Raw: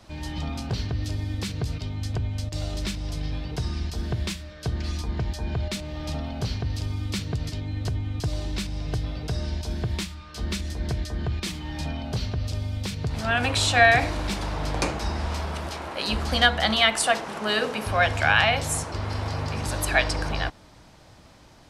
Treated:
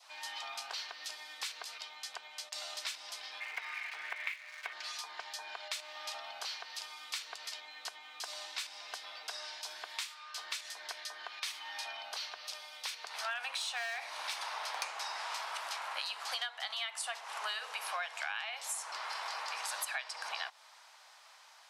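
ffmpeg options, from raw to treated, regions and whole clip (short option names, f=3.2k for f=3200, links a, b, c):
-filter_complex "[0:a]asettb=1/sr,asplit=3[a][b][c];[a]atrim=end=3.404[d];[b]atrim=start=3.4:end=4.73,asetpts=PTS-STARTPTS,afade=t=in:d=0.004:c=qsin,afade=t=out:st=1.326:d=0.004:c=qsin,lowpass=f=2.2k:t=q:w=6.8,aeval=exprs='sgn(val(0))*max(abs(val(0))-0.0075,0)':c=same[e];[c]atrim=start=4.726[f];[d][e]acrossfade=d=0.004:c1=hsin:c2=qsin[g];[g][f]acrossfade=d=0.004:c1=qsin:c2=hsin,asettb=1/sr,asplit=3[h][i][j];[h]atrim=end=10.884[k];[i]atrim=start=10.88:end=14.87,asetpts=PTS-STARTPTS,afade=t=in:d=0.004:c=qsin,afade=t=out:st=3.986:d=0.004:c=qsin,bandreject=f=7.4k:w=10,asoftclip=type=hard:threshold=-15dB[l];[j]atrim=start=14.866[m];[k][l]acrossfade=d=0.004:c1=hsin:c2=qsin[n];[n][m]acrossfade=d=0.004:c1=qsin:c2=hsin,highpass=f=860:w=0.5412,highpass=f=860:w=1.3066,adynamicequalizer=threshold=0.01:dfrequency=1500:dqfactor=2:tfrequency=1500:tqfactor=2:attack=5:release=100:ratio=0.375:range=2:mode=cutabove:tftype=bell,acompressor=threshold=-33dB:ratio=16,volume=-1.5dB"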